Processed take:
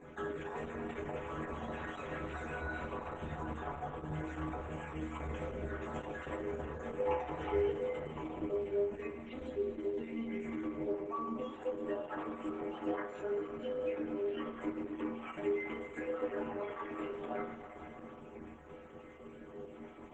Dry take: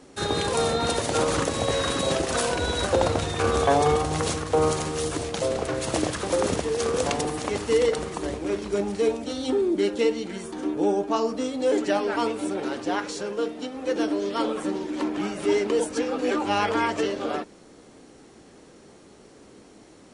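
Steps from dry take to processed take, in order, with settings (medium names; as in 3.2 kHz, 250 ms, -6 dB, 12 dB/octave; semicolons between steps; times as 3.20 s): random holes in the spectrogram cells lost 32%; compression 8:1, threshold -38 dBFS, peak gain reduction 21 dB; Butterworth band-stop 4.8 kHz, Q 0.89; 6.98–7.72 s: comb 2.3 ms, depth 93%; 9.76–10.43 s: upward compressor, threshold -57 dBFS; distance through air 150 m; inharmonic resonator 74 Hz, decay 0.77 s, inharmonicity 0.008; on a send at -6 dB: reverberation RT60 3.8 s, pre-delay 24 ms; on the sum: trim +14.5 dB; Opus 10 kbps 48 kHz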